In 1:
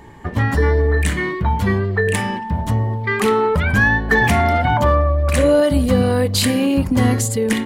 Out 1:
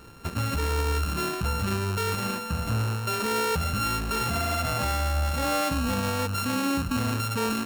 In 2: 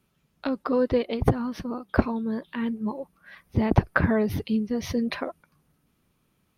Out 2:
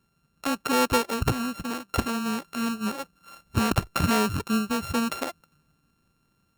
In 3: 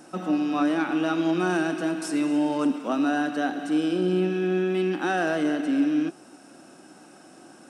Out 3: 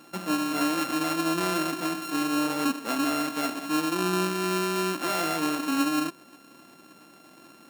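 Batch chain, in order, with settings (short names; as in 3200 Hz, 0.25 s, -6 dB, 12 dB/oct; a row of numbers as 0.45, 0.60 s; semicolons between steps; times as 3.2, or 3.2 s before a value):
sample sorter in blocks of 32 samples; maximiser +11.5 dB; match loudness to -27 LUFS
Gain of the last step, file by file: -18.0, -11.5, -14.5 dB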